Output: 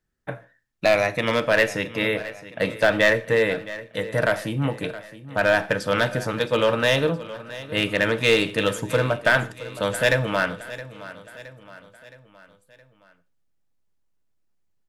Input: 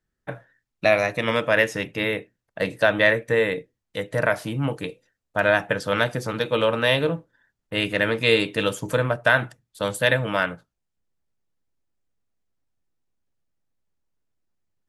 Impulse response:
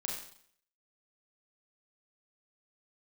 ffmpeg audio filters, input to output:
-filter_complex "[0:a]aeval=exprs='clip(val(0),-1,0.224)':c=same,aecho=1:1:668|1336|2004|2672:0.158|0.0792|0.0396|0.0198,asplit=2[a][b];[1:a]atrim=start_sample=2205,afade=t=out:st=0.21:d=0.01,atrim=end_sample=9702[c];[b][c]afir=irnorm=-1:irlink=0,volume=-15.5dB[d];[a][d]amix=inputs=2:normalize=0"

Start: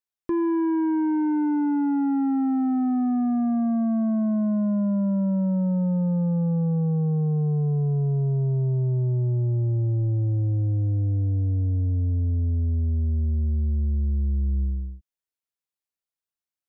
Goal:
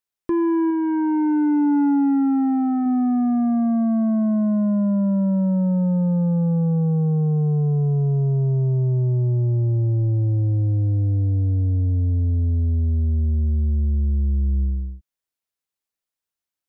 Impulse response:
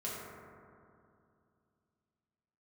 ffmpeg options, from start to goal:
-filter_complex "[0:a]asettb=1/sr,asplit=3[a][b][c];[a]atrim=end=0.694[d];[b]atrim=start=0.69:end=2.86,asetpts=PTS-STARTPTS,afade=t=in:d=0.004:c=qsin,afade=t=out:st=2.166:d=0.004:c=qsin,asplit=2[e][f];[f]adelay=14,volume=-13dB[g];[e][g]amix=inputs=2:normalize=0,atrim=end_sample=95697[h];[c]atrim=start=2.856[i];[d][h]acrossfade=d=0.004:c1=hsin:c2=qsin[j];[j][i]acrossfade=d=0.004:c1=qsin:c2=hsin,volume=3.5dB"

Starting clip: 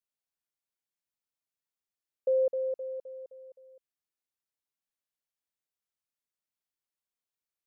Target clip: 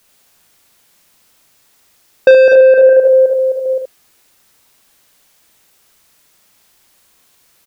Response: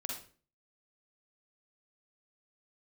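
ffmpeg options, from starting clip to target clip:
-filter_complex "[0:a]asettb=1/sr,asplit=3[a][b][c];[a]atrim=end=2.894[d];[b]atrim=start=2.89:end=3.66,asetpts=PTS-STARTPTS,afade=t=in:d=0.004:c=qsin,afade=t=out:st=0.766:d=0.004:c=qsin,highpass=f=620:p=1[e];[c]atrim=start=3.656[f];[d][e]acrossfade=d=0.004:c1=hsin:c2=qsin[g];[g][f]acrossfade=d=0.004:c1=qsin:c2=hsin,asplit=2[h][i];[i]acompressor=threshold=-41dB:ratio=6,volume=1dB[j];[h][j]amix=inputs=2:normalize=0,asoftclip=type=tanh:threshold=-31dB,aecho=1:1:38|75:0.422|0.631,alimiter=level_in=31dB:limit=-1dB:release=50:level=0:latency=1,volume=-1dB"

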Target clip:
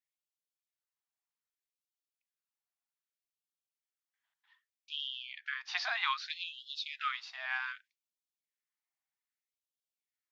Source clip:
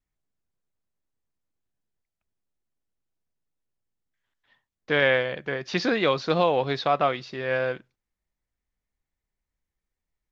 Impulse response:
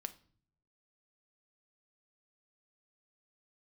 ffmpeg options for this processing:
-filter_complex "[0:a]asettb=1/sr,asplit=3[a][b][c];[a]atrim=end=4.964[d];[b]atrim=start=4.96:end=6.46,asetpts=PTS-STARTPTS,afade=t=in:d=0.004:c=qsin,afade=t=out:st=1.496:d=0.004:c=qsin,lowpass=6k[e];[c]atrim=start=6.456[f];[d][e]acrossfade=d=0.004:c1=hsin:c2=qsin[g];[g][f]acrossfade=d=0.004:c1=qsin:c2=hsin,afftfilt=real='re*gte(b*sr/1024,640*pow(2800/640,0.5+0.5*sin(2*PI*0.64*pts/sr)))':imag='im*gte(b*sr/1024,640*pow(2800/640,0.5+0.5*sin(2*PI*0.64*pts/sr)))':win_size=1024:overlap=0.75,volume=-4.5dB"

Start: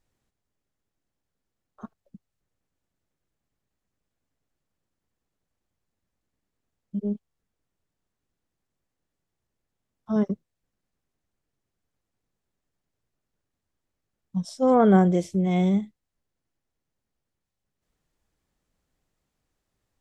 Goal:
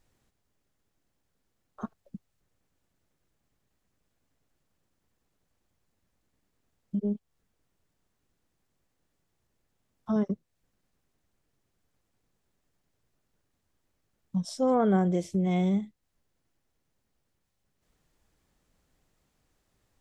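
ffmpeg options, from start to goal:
-af "acompressor=threshold=-37dB:ratio=2,volume=5.5dB"

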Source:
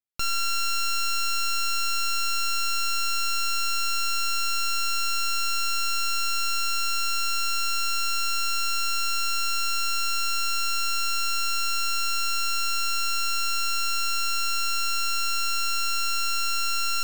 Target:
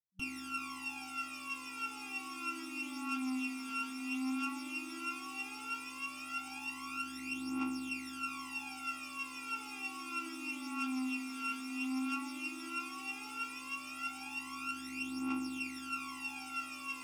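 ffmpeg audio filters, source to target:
-filter_complex "[0:a]afftfilt=real='re*(1-between(b*sr/4096,190,5800))':imag='im*(1-between(b*sr/4096,190,5800))':win_size=4096:overlap=0.75,aeval=exprs='(mod(15.8*val(0)+1,2)-1)/15.8':c=same,aphaser=in_gain=1:out_gain=1:delay=4.4:decay=0.8:speed=0.13:type=triangular,asplit=3[a][b][c];[a]bandpass=f=300:t=q:w=8,volume=0dB[d];[b]bandpass=f=870:t=q:w=8,volume=-6dB[e];[c]bandpass=f=2.24k:t=q:w=8,volume=-9dB[f];[d][e][f]amix=inputs=3:normalize=0,volume=8.5dB"

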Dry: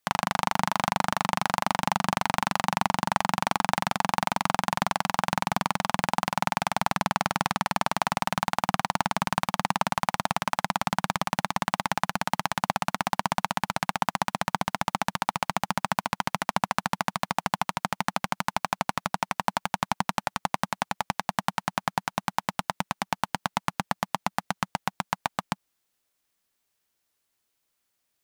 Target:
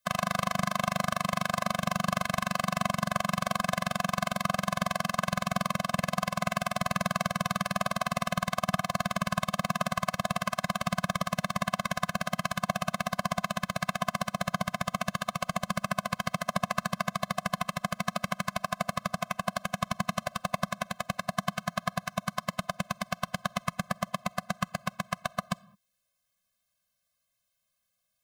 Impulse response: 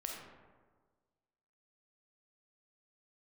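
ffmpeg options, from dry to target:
-filter_complex "[0:a]asplit=2[a][b];[b]equalizer=f=2.1k:t=o:w=2.1:g=-3[c];[1:a]atrim=start_sample=2205,afade=t=out:st=0.27:d=0.01,atrim=end_sample=12348[d];[c][d]afir=irnorm=-1:irlink=0,volume=-17dB[e];[a][e]amix=inputs=2:normalize=0,afftfilt=real='re*eq(mod(floor(b*sr/1024/250),2),0)':imag='im*eq(mod(floor(b*sr/1024/250),2),0)':win_size=1024:overlap=0.75"

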